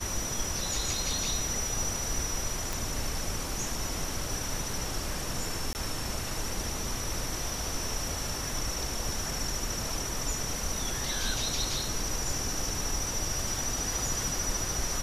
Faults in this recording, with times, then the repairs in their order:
0:02.73: click
0:05.73–0:05.75: drop-out 19 ms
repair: click removal
repair the gap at 0:05.73, 19 ms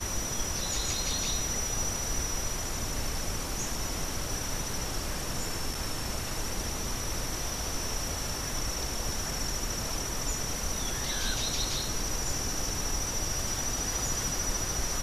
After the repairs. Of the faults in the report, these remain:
none of them is left

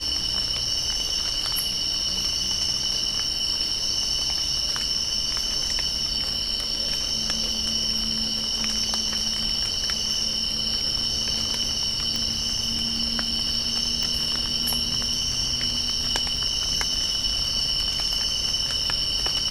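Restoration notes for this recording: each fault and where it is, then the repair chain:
surface crackle 53 per second −32 dBFS
0:12.16: click −13 dBFS
0:14.03: click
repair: click removal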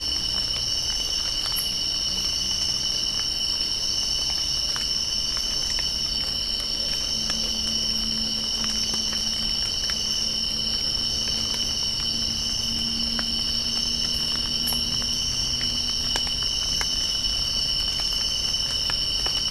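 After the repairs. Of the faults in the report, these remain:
none of them is left

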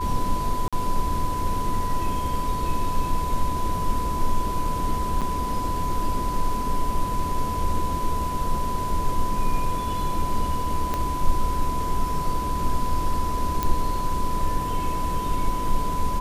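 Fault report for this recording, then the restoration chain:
whistle 1,000 Hz −27 dBFS
0:00.68–0:00.73: drop-out 46 ms
0:05.21–0:05.22: drop-out 6.8 ms
0:10.94: click −12 dBFS
0:13.63: click −9 dBFS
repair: click removal
notch filter 1,000 Hz, Q 30
repair the gap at 0:00.68, 46 ms
repair the gap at 0:05.21, 6.8 ms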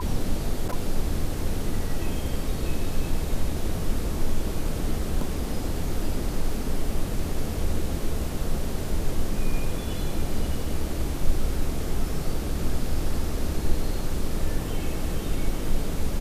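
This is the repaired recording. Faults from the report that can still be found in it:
0:10.94: click

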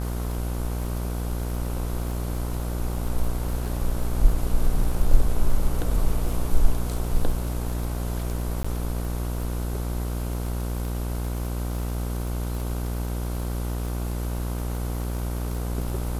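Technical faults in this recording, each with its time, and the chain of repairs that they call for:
mains buzz 60 Hz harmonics 26 −28 dBFS
surface crackle 36 per second −30 dBFS
0:08.63–0:08.64: drop-out 15 ms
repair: click removal
hum removal 60 Hz, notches 26
repair the gap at 0:08.63, 15 ms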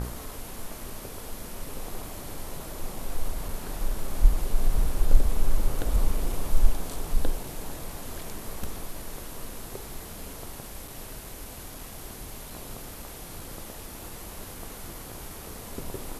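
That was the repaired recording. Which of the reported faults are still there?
none of them is left

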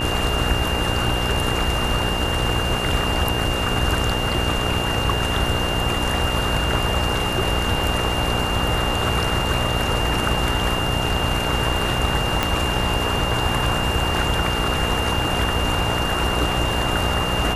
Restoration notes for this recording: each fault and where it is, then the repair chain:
mains buzz 60 Hz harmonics 16 −26 dBFS
whistle 2,800 Hz −26 dBFS
0:12.43: click −4 dBFS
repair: click removal
hum removal 60 Hz, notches 16
notch filter 2,800 Hz, Q 30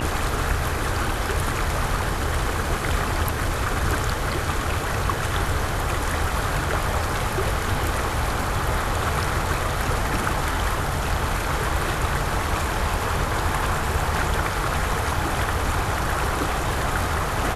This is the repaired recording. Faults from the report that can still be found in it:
0:12.43: click

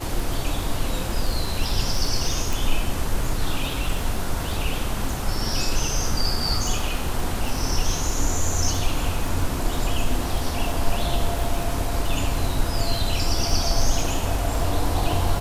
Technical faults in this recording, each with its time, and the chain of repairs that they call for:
surface crackle 20 per second −25 dBFS
0:02.53: click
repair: click removal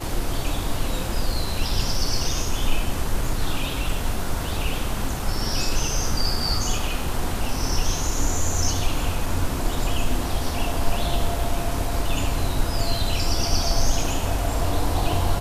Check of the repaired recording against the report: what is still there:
none of them is left

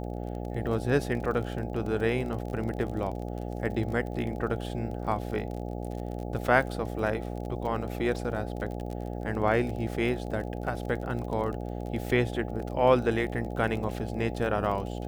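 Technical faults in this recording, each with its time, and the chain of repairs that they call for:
mains buzz 60 Hz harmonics 14 −35 dBFS
surface crackle 31 per second −35 dBFS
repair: click removal
hum removal 60 Hz, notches 14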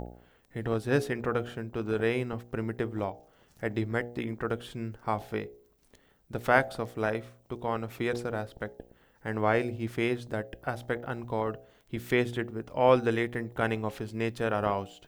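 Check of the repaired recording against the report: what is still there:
none of them is left

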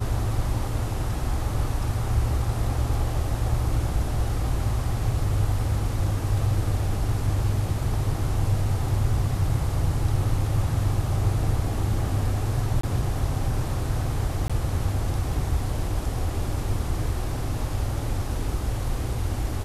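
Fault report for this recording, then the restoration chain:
0:12.81–0:12.83: drop-out 24 ms
0:14.48–0:14.50: drop-out 16 ms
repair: repair the gap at 0:12.81, 24 ms
repair the gap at 0:14.48, 16 ms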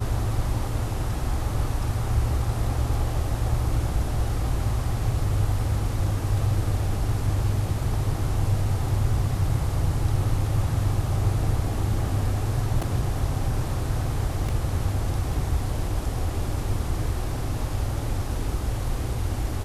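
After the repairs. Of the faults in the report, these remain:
none of them is left

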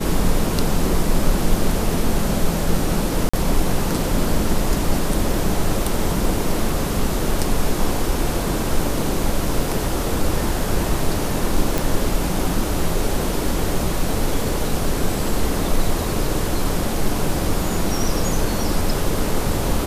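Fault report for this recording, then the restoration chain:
0:03.29–0:03.33: drop-out 45 ms
0:11.78: click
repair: click removal
repair the gap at 0:03.29, 45 ms

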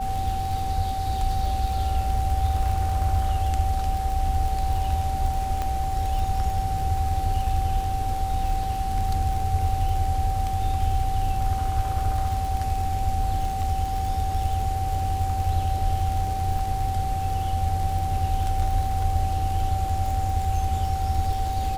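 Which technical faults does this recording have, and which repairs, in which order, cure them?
surface crackle 47 per second −28 dBFS
whistle 770 Hz −27 dBFS
0:05.62: click −15 dBFS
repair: click removal
notch filter 770 Hz, Q 30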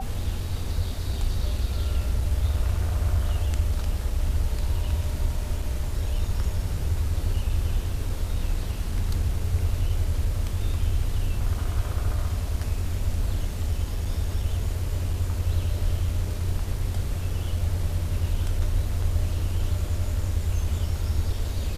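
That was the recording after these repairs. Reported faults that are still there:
none of them is left

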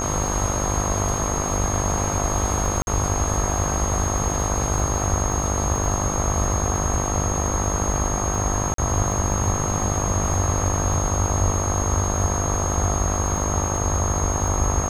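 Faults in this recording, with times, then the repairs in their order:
mains buzz 50 Hz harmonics 26 −27 dBFS
surface crackle 31 per second −29 dBFS
whistle 6,500 Hz −27 dBFS
0:02.82–0:02.87: drop-out 51 ms
0:08.74–0:08.78: drop-out 43 ms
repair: click removal
hum removal 50 Hz, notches 26
notch filter 6,500 Hz, Q 30
repair the gap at 0:02.82, 51 ms
repair the gap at 0:08.74, 43 ms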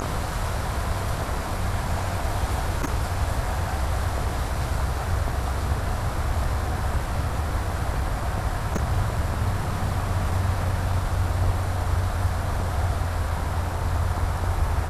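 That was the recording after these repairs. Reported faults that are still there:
none of them is left

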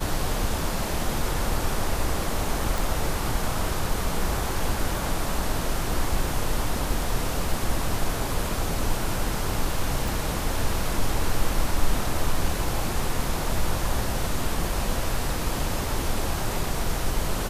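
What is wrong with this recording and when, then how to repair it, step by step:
0:02.78: click
0:10.08: click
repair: click removal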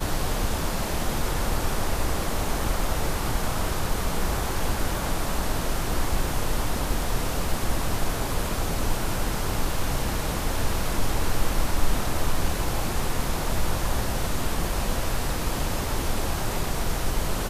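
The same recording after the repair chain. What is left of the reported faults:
none of them is left

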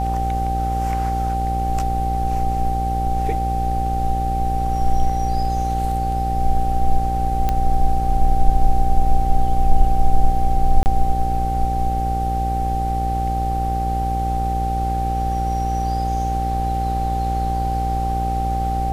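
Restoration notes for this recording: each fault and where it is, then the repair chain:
mains buzz 60 Hz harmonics 14 −23 dBFS
whistle 780 Hz −22 dBFS
0:07.49: click −8 dBFS
0:10.83–0:10.86: drop-out 29 ms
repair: click removal
hum removal 60 Hz, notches 14
notch filter 780 Hz, Q 30
repair the gap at 0:10.83, 29 ms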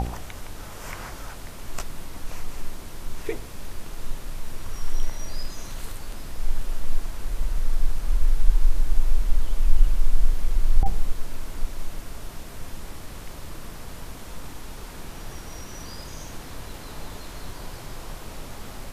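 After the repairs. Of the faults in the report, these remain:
none of them is left

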